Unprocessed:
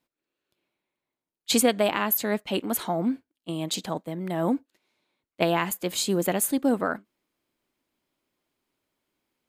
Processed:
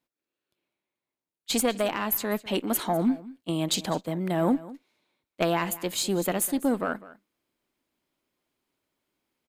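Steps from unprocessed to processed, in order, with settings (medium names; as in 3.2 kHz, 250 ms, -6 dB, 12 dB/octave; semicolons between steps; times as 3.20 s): single-diode clipper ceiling -13 dBFS; gain riding 2 s; on a send: delay 201 ms -18.5 dB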